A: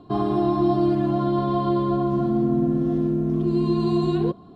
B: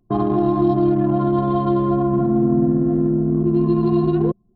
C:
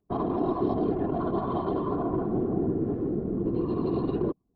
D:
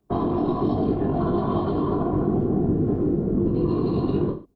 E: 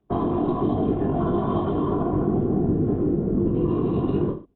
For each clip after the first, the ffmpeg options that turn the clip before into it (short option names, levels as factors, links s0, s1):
-filter_complex "[0:a]anlmdn=251,acrossover=split=330|3000[s0][s1][s2];[s1]acompressor=threshold=0.0708:ratio=6[s3];[s0][s3][s2]amix=inputs=3:normalize=0,volume=1.68"
-af "lowshelf=f=140:g=-10,afftfilt=real='hypot(re,im)*cos(2*PI*random(0))':imag='hypot(re,im)*sin(2*PI*random(1))':win_size=512:overlap=0.75,volume=0.794"
-filter_complex "[0:a]acrossover=split=220|3000[s0][s1][s2];[s1]acompressor=threshold=0.0251:ratio=6[s3];[s0][s3][s2]amix=inputs=3:normalize=0,aecho=1:1:20|43|69.45|99.87|134.8:0.631|0.398|0.251|0.158|0.1,volume=2.11"
-af "aresample=8000,aresample=44100"